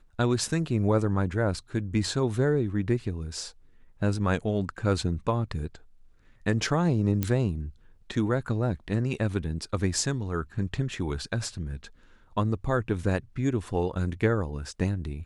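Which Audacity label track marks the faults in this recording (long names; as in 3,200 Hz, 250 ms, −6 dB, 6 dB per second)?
7.230000	7.230000	click −12 dBFS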